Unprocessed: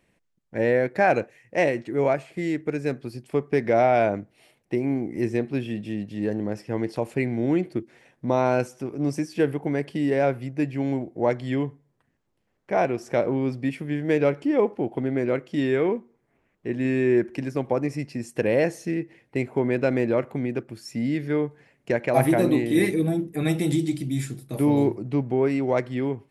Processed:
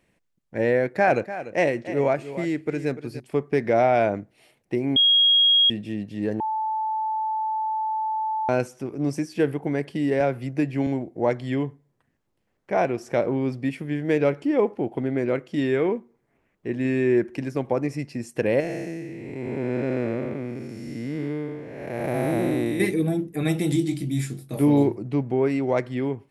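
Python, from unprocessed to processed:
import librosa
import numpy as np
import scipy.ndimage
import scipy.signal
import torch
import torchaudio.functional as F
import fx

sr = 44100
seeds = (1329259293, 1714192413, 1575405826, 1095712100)

y = fx.echo_single(x, sr, ms=294, db=-13.0, at=(0.78, 3.2))
y = fx.band_squash(y, sr, depth_pct=70, at=(10.2, 10.87))
y = fx.spec_blur(y, sr, span_ms=409.0, at=(18.6, 22.8))
y = fx.doubler(y, sr, ms=21.0, db=-8.0, at=(23.73, 24.83))
y = fx.edit(y, sr, fx.bleep(start_s=4.96, length_s=0.74, hz=3280.0, db=-14.0),
    fx.bleep(start_s=6.4, length_s=2.09, hz=874.0, db=-23.0), tone=tone)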